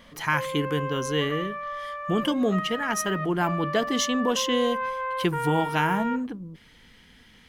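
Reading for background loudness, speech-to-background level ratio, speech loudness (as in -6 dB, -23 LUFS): -32.0 LUFS, 5.5 dB, -26.5 LUFS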